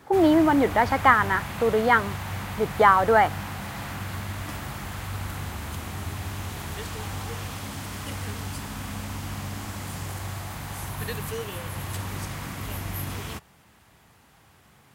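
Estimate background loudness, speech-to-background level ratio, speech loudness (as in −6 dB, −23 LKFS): −33.5 LKFS, 13.0 dB, −20.5 LKFS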